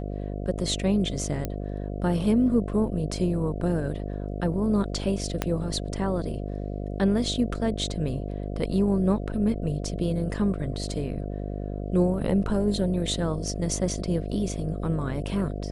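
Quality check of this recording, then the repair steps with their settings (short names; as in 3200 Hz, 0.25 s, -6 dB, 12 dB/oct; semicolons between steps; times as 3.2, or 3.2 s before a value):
buzz 50 Hz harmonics 14 -32 dBFS
1.45 pop -14 dBFS
5.42 pop -10 dBFS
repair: de-click; de-hum 50 Hz, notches 14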